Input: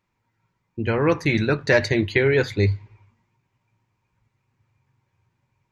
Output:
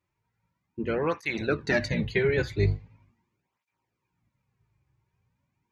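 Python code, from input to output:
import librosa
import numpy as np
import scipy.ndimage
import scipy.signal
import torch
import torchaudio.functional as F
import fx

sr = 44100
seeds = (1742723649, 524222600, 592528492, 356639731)

y = fx.octave_divider(x, sr, octaves=1, level_db=-2.0)
y = fx.hum_notches(y, sr, base_hz=60, count=2)
y = fx.flanger_cancel(y, sr, hz=0.41, depth_ms=4.5)
y = y * librosa.db_to_amplitude(-4.0)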